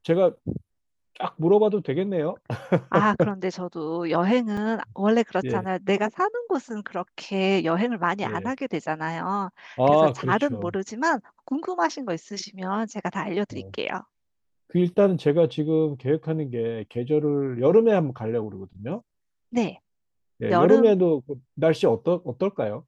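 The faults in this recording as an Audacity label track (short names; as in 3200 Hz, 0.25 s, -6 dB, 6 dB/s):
4.570000	4.570000	gap 4.4 ms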